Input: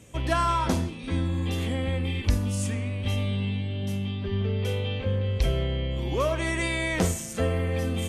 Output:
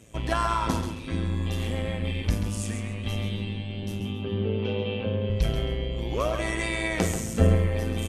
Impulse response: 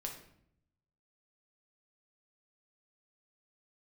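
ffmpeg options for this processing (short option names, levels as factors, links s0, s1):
-filter_complex "[0:a]asettb=1/sr,asplit=3[s0][s1][s2];[s0]atrim=end=7.154[s3];[s1]atrim=start=7.15:end=7.55,asetpts=PTS-STARTPTS,afade=t=in:d=0.004:c=qsin,afade=t=out:st=0.396:d=0.004:c=qsin,lowshelf=f=350:g=11[s4];[s2]atrim=start=7.546[s5];[s3][s4]acrossfade=d=0.004:c1=hsin:c2=qsin[s6];[s6][s5]acrossfade=d=0.004:c1=qsin:c2=hsin,tremolo=f=110:d=0.71,asettb=1/sr,asplit=3[s7][s8][s9];[s7]atrim=end=4.004[s10];[s8]atrim=start=4:end=5.3,asetpts=PTS-STARTPTS,afade=t=in:d=0.004:c=qsin,afade=t=out:st=1.296:d=0.004:c=qsin,highpass=110,equalizer=f=110:t=q:w=4:g=6,equalizer=f=240:t=q:w=4:g=7,equalizer=f=440:t=q:w=4:g=5,equalizer=f=820:t=q:w=4:g=4,equalizer=f=1900:t=q:w=4:g=-7,equalizer=f=2800:t=q:w=4:g=4,lowpass=f=3800:w=0.5412,lowpass=f=3800:w=1.3066[s11];[s9]atrim=start=5.296[s12];[s10][s11]acrossfade=d=0.004:c1=hsin:c2=qsin[s13];[s13][s12]acrossfade=d=0.004:c1=qsin:c2=hsin,aecho=1:1:135|270|405:0.398|0.115|0.0335,volume=1.19"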